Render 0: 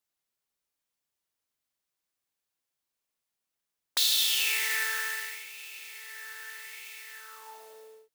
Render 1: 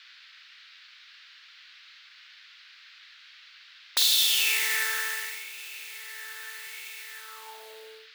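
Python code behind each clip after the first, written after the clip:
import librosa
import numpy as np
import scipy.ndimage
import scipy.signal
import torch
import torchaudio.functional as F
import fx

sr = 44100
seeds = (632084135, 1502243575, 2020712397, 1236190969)

y = fx.dmg_noise_band(x, sr, seeds[0], low_hz=1400.0, high_hz=4500.0, level_db=-55.0)
y = fx.room_flutter(y, sr, wall_m=8.1, rt60_s=0.25)
y = F.gain(torch.from_numpy(y), 2.5).numpy()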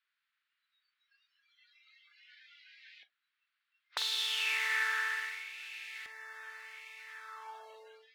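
y = fx.filter_lfo_bandpass(x, sr, shape='saw_up', hz=0.33, low_hz=740.0, high_hz=1700.0, q=0.93)
y = fx.noise_reduce_blind(y, sr, reduce_db=25)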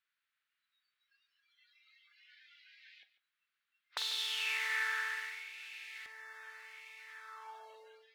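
y = x + 10.0 ** (-16.0 / 20.0) * np.pad(x, (int(145 * sr / 1000.0), 0))[:len(x)]
y = F.gain(torch.from_numpy(y), -3.0).numpy()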